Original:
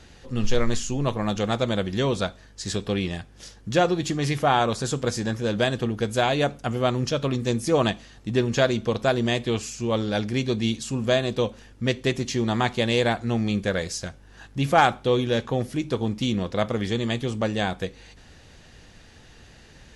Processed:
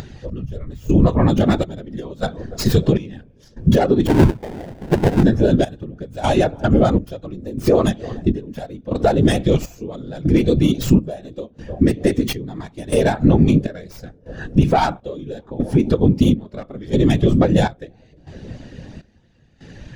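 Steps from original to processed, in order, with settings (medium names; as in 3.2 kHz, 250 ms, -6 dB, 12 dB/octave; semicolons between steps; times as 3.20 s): tracing distortion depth 0.26 ms; filtered feedback delay 302 ms, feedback 78%, low-pass 1.3 kHz, level -23 dB; whisper effect; compression 10:1, threshold -28 dBFS, peak gain reduction 16.5 dB; 4.07–5.23 s: sample-rate reducer 1.2 kHz, jitter 20%; upward compressor, threshold -46 dBFS; trance gate "xx....xxx" 101 bpm -12 dB; loudness maximiser +22 dB; spectral contrast expander 1.5:1; trim -1 dB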